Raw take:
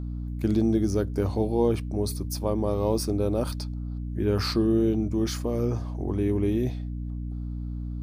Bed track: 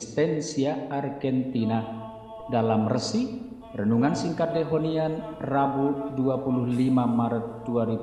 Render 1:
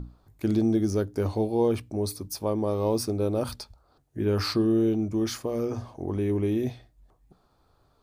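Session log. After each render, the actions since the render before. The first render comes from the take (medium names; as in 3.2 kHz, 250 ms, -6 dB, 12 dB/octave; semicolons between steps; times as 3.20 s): hum notches 60/120/180/240/300 Hz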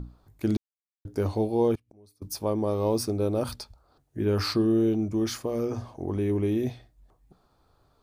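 0.57–1.05 s: mute; 1.75–2.22 s: inverted gate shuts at -30 dBFS, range -27 dB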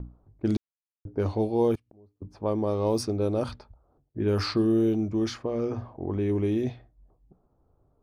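level-controlled noise filter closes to 590 Hz, open at -20 dBFS; gate with hold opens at -59 dBFS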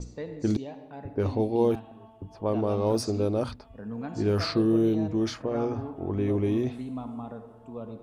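add bed track -13.5 dB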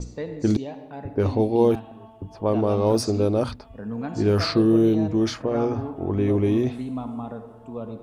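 trim +5 dB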